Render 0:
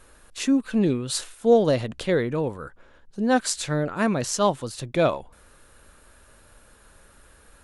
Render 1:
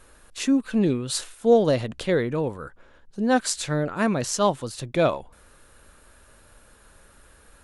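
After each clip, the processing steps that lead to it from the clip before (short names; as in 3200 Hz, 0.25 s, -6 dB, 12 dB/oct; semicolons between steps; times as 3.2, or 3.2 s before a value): nothing audible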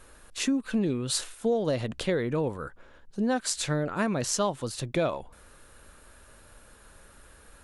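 compressor 6:1, threshold -23 dBFS, peak gain reduction 11 dB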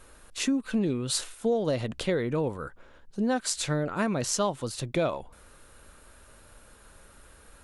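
notch 1700 Hz, Q 26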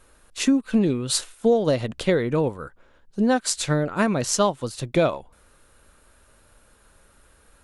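upward expander 1.5:1, over -44 dBFS; gain +8 dB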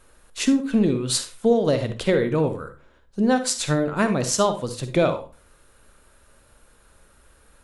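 reverb, pre-delay 46 ms, DRR 9 dB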